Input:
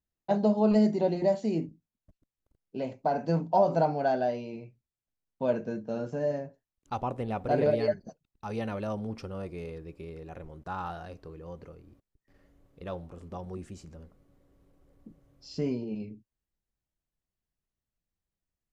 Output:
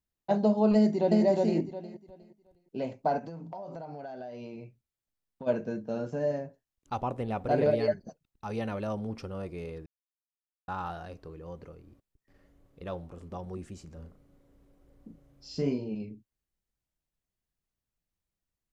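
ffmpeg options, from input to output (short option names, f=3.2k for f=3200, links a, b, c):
-filter_complex "[0:a]asplit=2[a][b];[b]afade=t=in:st=0.75:d=0.01,afade=t=out:st=1.24:d=0.01,aecho=0:1:360|720|1080|1440:0.841395|0.210349|0.0525872|0.0131468[c];[a][c]amix=inputs=2:normalize=0,asplit=3[d][e][f];[d]afade=t=out:st=3.18:d=0.02[g];[e]acompressor=threshold=-37dB:ratio=16:attack=3.2:release=140:knee=1:detection=peak,afade=t=in:st=3.18:d=0.02,afade=t=out:st=5.46:d=0.02[h];[f]afade=t=in:st=5.46:d=0.02[i];[g][h][i]amix=inputs=3:normalize=0,asplit=3[j][k][l];[j]afade=t=out:st=13.96:d=0.02[m];[k]asplit=2[n][o];[o]adelay=36,volume=-5dB[p];[n][p]amix=inputs=2:normalize=0,afade=t=in:st=13.96:d=0.02,afade=t=out:st=15.88:d=0.02[q];[l]afade=t=in:st=15.88:d=0.02[r];[m][q][r]amix=inputs=3:normalize=0,asplit=3[s][t][u];[s]atrim=end=9.86,asetpts=PTS-STARTPTS,afade=t=out:st=9.856:d=0.004:c=hsin[v];[t]atrim=start=9.86:end=10.68,asetpts=PTS-STARTPTS,volume=0[w];[u]atrim=start=10.68,asetpts=PTS-STARTPTS,afade=t=in:d=0.004:c=hsin[x];[v][w][x]concat=n=3:v=0:a=1"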